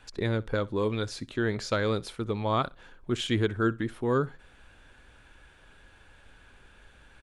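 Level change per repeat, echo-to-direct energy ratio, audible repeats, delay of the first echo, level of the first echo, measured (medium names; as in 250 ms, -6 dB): no regular repeats, -22.5 dB, 1, 63 ms, -22.5 dB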